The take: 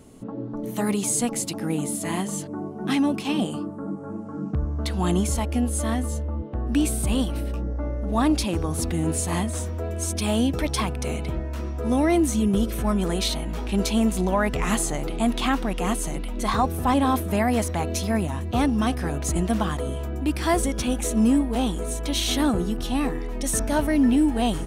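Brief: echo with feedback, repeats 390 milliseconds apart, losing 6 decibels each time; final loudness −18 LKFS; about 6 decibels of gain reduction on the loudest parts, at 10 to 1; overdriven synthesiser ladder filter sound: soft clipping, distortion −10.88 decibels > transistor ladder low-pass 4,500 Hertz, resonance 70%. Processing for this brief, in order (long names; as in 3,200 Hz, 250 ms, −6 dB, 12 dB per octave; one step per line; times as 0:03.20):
downward compressor 10 to 1, threshold −22 dBFS
repeating echo 390 ms, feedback 50%, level −6 dB
soft clipping −26 dBFS
transistor ladder low-pass 4,500 Hz, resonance 70%
level +23 dB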